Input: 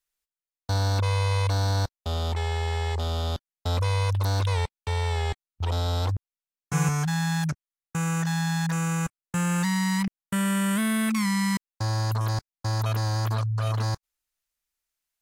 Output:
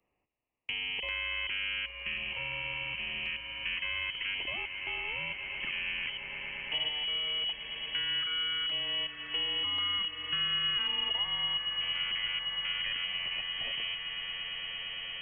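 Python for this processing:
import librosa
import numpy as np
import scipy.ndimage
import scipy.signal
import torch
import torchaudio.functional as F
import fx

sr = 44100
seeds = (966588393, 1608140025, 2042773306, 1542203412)

p1 = scipy.signal.sosfilt(scipy.signal.butter(4, 150.0, 'highpass', fs=sr, output='sos'), x)
p2 = fx.freq_invert(p1, sr, carrier_hz=3100)
p3 = fx.filter_lfo_notch(p2, sr, shape='square', hz=0.46, low_hz=680.0, high_hz=1500.0, q=0.87)
p4 = p3 + fx.echo_swell(p3, sr, ms=114, loudest=8, wet_db=-17.0, dry=0)
p5 = fx.band_squash(p4, sr, depth_pct=70)
y = p5 * 10.0 ** (-4.5 / 20.0)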